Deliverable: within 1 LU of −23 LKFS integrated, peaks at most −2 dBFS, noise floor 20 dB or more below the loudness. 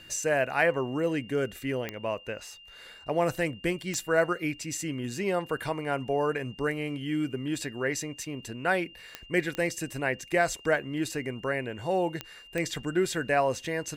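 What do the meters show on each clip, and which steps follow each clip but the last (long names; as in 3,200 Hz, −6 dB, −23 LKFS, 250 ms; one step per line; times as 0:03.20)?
number of clicks 6; interfering tone 2,800 Hz; level of the tone −49 dBFS; integrated loudness −30.0 LKFS; sample peak −11.0 dBFS; target loudness −23.0 LKFS
→ click removal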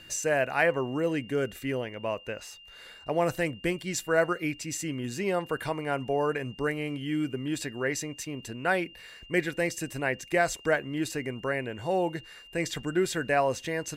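number of clicks 0; interfering tone 2,800 Hz; level of the tone −49 dBFS
→ notch filter 2,800 Hz, Q 30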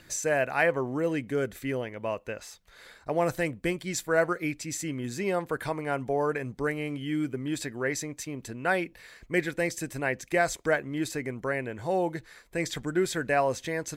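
interfering tone none found; integrated loudness −30.0 LKFS; sample peak −11.0 dBFS; target loudness −23.0 LKFS
→ level +7 dB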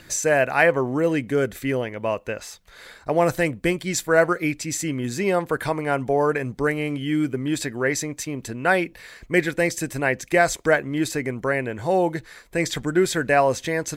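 integrated loudness −23.0 LKFS; sample peak −4.0 dBFS; background noise floor −49 dBFS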